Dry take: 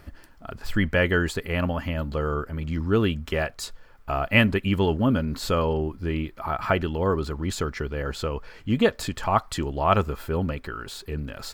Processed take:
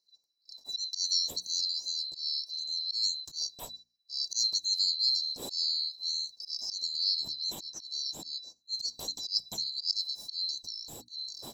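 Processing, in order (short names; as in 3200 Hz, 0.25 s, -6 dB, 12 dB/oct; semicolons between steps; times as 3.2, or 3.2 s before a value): band-swap scrambler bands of 4000 Hz; gate -39 dBFS, range -23 dB; band shelf 1900 Hz -13.5 dB; notches 60/120/180/240/300 Hz; auto swell 0.124 s; gain -6 dB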